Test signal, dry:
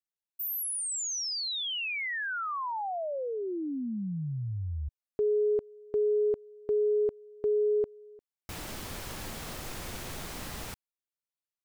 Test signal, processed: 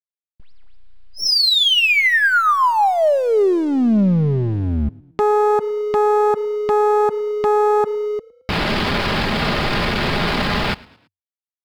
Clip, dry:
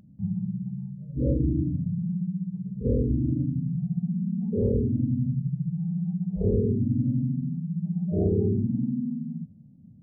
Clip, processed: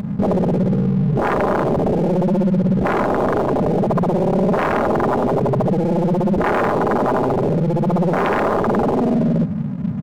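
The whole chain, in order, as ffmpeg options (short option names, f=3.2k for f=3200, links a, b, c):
-filter_complex "[0:a]aeval=exprs='(tanh(8.91*val(0)+0.75)-tanh(0.75))/8.91':c=same,acontrast=68,bass=f=250:g=9,treble=f=4k:g=-13,aeval=exprs='0.841*sin(PI/2*8.91*val(0)/0.841)':c=same,aemphasis=mode=production:type=bsi,aresample=11025,aresample=44100,acompressor=threshold=-17dB:ratio=8:attack=0.43:release=40:detection=rms,aeval=exprs='sgn(val(0))*max(abs(val(0))-0.01,0)':c=same,aeval=exprs='0.237*(cos(1*acos(clip(val(0)/0.237,-1,1)))-cos(1*PI/2))+0.0188*(cos(2*acos(clip(val(0)/0.237,-1,1)))-cos(2*PI/2))':c=same,aecho=1:1:4.9:0.32,asplit=2[a][b];[b]asplit=3[c][d][e];[c]adelay=110,afreqshift=30,volume=-23dB[f];[d]adelay=220,afreqshift=60,volume=-30.5dB[g];[e]adelay=330,afreqshift=90,volume=-38.1dB[h];[f][g][h]amix=inputs=3:normalize=0[i];[a][i]amix=inputs=2:normalize=0,volume=4dB"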